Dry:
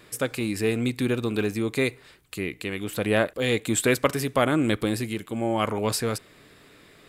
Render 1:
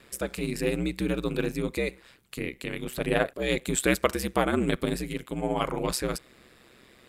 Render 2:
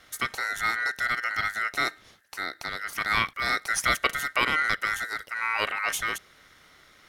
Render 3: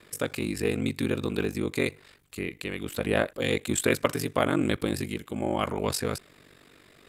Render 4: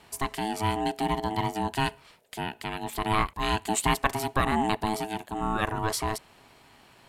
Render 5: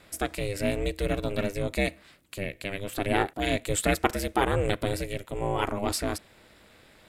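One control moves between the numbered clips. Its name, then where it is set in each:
ring modulator, frequency: 65, 1700, 24, 540, 200 Hz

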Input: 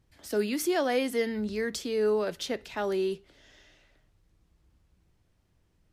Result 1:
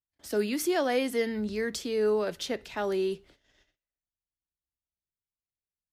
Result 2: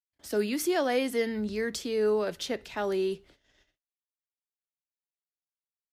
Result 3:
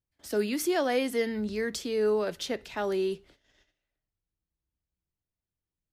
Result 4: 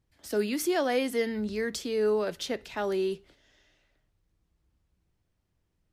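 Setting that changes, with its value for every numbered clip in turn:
gate, range: -36, -60, -23, -7 dB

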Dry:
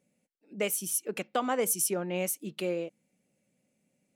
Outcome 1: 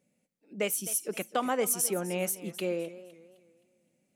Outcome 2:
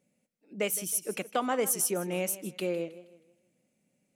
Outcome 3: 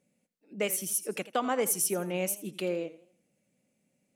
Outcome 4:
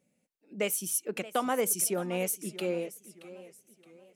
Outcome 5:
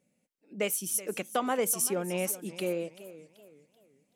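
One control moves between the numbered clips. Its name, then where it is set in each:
warbling echo, time: 258, 159, 83, 625, 382 ms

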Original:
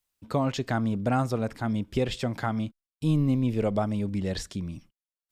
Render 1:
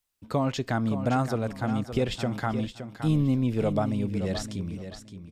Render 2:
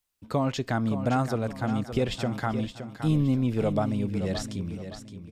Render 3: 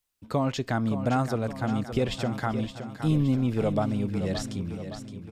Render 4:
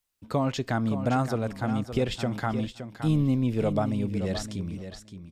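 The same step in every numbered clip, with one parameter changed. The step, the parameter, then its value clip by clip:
feedback echo, feedback: 24, 37, 55, 16%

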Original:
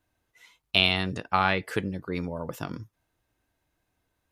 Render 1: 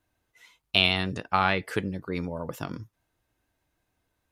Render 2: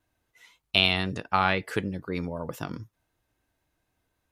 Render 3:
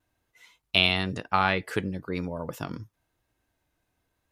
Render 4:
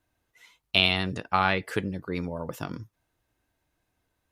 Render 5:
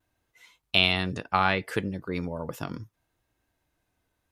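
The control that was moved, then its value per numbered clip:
vibrato, rate: 6.7, 3.9, 1, 14, 0.69 Hz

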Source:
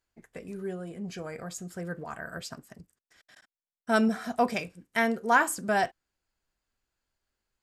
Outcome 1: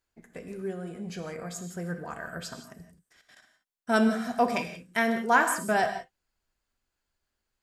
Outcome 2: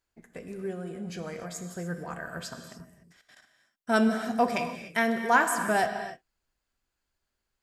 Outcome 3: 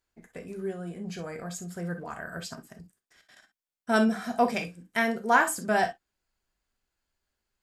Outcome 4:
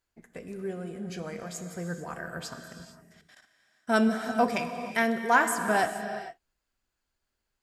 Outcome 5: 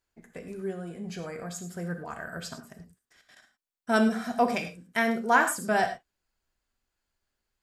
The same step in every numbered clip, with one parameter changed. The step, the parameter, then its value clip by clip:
non-linear reverb, gate: 200, 320, 80, 490, 130 ms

